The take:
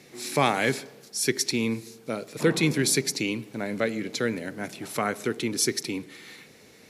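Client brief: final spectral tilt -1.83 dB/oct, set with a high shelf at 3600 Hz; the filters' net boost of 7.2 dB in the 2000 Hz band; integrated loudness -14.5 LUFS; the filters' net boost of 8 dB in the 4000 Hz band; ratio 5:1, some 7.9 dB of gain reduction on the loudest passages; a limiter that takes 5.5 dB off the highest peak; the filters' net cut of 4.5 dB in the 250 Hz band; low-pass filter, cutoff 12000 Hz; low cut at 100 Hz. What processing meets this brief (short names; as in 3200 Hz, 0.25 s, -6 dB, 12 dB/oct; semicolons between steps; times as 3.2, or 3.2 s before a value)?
HPF 100 Hz; LPF 12000 Hz; bell 250 Hz -6 dB; bell 2000 Hz +6 dB; high shelf 3600 Hz +4.5 dB; bell 4000 Hz +5.5 dB; compressor 5:1, threshold -24 dBFS; gain +16 dB; limiter -1.5 dBFS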